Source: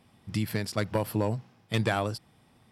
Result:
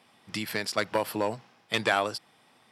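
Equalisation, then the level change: weighting filter A; +4.5 dB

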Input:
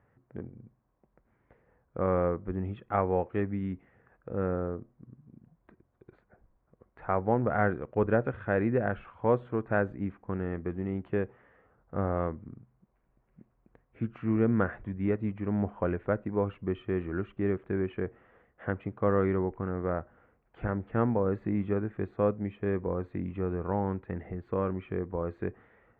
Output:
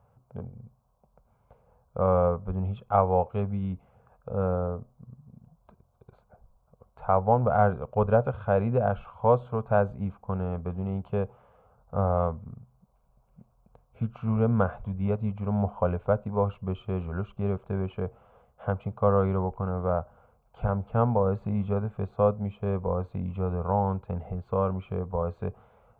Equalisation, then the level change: fixed phaser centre 770 Hz, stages 4; +7.5 dB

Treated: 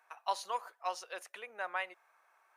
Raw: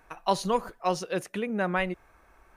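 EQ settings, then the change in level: ladder high-pass 580 Hz, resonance 20%; -3.0 dB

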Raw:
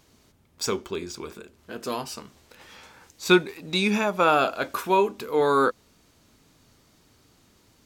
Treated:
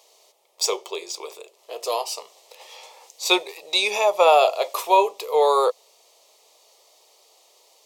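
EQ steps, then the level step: HPF 460 Hz 24 dB/oct; high shelf 9600 Hz -4.5 dB; fixed phaser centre 630 Hz, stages 4; +9.0 dB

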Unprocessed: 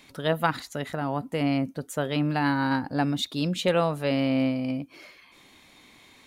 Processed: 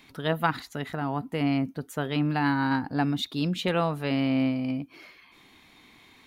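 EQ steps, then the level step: bell 560 Hz -8.5 dB 0.28 oct; bell 7900 Hz -7 dB 1.2 oct; 0.0 dB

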